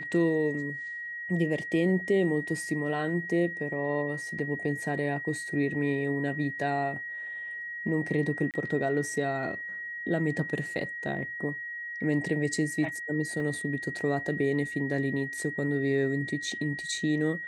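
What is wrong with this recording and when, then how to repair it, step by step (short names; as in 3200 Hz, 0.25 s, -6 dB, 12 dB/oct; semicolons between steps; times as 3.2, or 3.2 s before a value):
tone 1900 Hz -35 dBFS
4.39 gap 2.9 ms
8.51–8.54 gap 28 ms
13.4 gap 2.3 ms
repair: notch 1900 Hz, Q 30; interpolate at 4.39, 2.9 ms; interpolate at 8.51, 28 ms; interpolate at 13.4, 2.3 ms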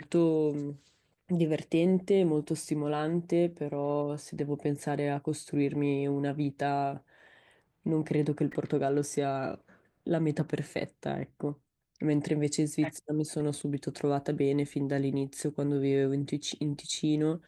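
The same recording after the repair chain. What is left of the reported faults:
none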